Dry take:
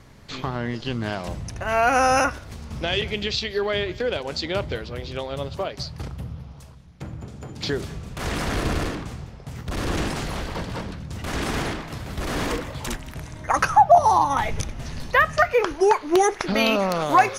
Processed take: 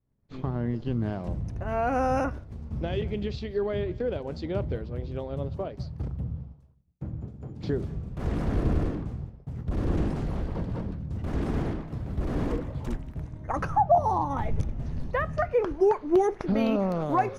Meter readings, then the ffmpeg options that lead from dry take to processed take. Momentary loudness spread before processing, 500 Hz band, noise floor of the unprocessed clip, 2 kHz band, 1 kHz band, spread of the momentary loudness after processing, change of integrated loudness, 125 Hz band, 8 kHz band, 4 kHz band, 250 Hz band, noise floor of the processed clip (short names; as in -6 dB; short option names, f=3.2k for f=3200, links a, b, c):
18 LU, -4.5 dB, -42 dBFS, -14.5 dB, -8.5 dB, 13 LU, -6.0 dB, +1.0 dB, under -20 dB, -19.0 dB, -1.0 dB, -49 dBFS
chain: -af "highshelf=f=2.7k:g=-8,agate=range=-33dB:threshold=-33dB:ratio=3:detection=peak,tiltshelf=f=700:g=8,volume=-6.5dB"